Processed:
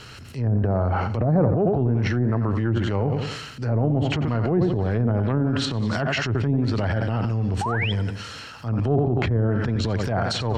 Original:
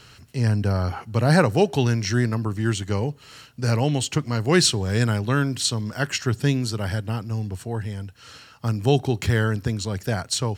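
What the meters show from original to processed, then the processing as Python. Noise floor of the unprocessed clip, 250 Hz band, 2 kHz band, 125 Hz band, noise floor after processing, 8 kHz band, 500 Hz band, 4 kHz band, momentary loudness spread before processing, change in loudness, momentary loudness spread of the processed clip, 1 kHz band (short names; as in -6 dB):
-50 dBFS, +1.0 dB, -2.0 dB, +1.0 dB, -40 dBFS, -14.0 dB, 0.0 dB, -5.0 dB, 12 LU, 0.0 dB, 6 LU, +0.5 dB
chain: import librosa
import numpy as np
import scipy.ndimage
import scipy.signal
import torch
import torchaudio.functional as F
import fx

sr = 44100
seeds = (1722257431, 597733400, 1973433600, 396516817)

p1 = x + fx.echo_feedback(x, sr, ms=88, feedback_pct=44, wet_db=-11.5, dry=0)
p2 = fx.dynamic_eq(p1, sr, hz=680.0, q=4.3, threshold_db=-42.0, ratio=4.0, max_db=7)
p3 = fx.env_lowpass_down(p2, sr, base_hz=530.0, full_db=-15.5)
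p4 = fx.spec_paint(p3, sr, seeds[0], shape='rise', start_s=7.61, length_s=0.31, low_hz=760.0, high_hz=3500.0, level_db=-30.0)
p5 = fx.high_shelf(p4, sr, hz=5300.0, db=-6.0)
p6 = fx.over_compress(p5, sr, threshold_db=-30.0, ratio=-1.0)
p7 = p5 + F.gain(torch.from_numpy(p6), -1.0).numpy()
p8 = fx.transient(p7, sr, attack_db=-9, sustain_db=7)
y = F.gain(torch.from_numpy(p8), -1.5).numpy()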